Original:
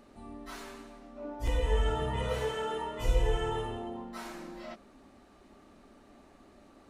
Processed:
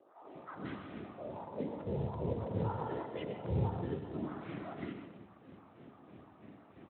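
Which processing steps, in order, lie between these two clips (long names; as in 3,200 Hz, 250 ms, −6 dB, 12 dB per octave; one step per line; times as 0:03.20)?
treble cut that deepens with the level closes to 610 Hz, closed at −28 dBFS
time-frequency box erased 0:03.81–0:04.05, 410–1,600 Hz
mains-hum notches 50/100 Hz
downward compressor 1.5 to 1, threshold −40 dBFS, peak gain reduction 6.5 dB
random phases in short frames
two-band tremolo in antiphase 3.1 Hz, depth 100%, crossover 700 Hz
high-frequency loss of the air 310 metres
three-band delay without the direct sound mids, highs, lows 180/350 ms, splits 420/1,500 Hz
convolution reverb RT60 0.75 s, pre-delay 83 ms, DRR 5.5 dB
regular buffer underruns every 0.33 s, samples 256, repeat, from 0:00.81
level +7.5 dB
Speex 15 kbit/s 8,000 Hz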